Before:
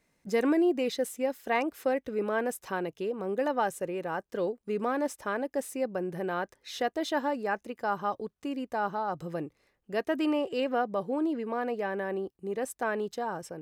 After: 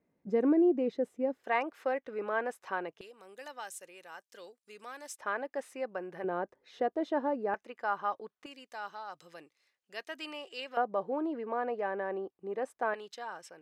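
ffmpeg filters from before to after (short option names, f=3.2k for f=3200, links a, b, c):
-af "asetnsamples=n=441:p=0,asendcmd='1.44 bandpass f 1200;3.01 bandpass f 6700;5.18 bandpass f 1400;6.24 bandpass f 450;7.54 bandpass f 1500;8.46 bandpass f 4500;10.77 bandpass f 840;12.94 bandpass f 2900',bandpass=f=300:t=q:w=0.68:csg=0"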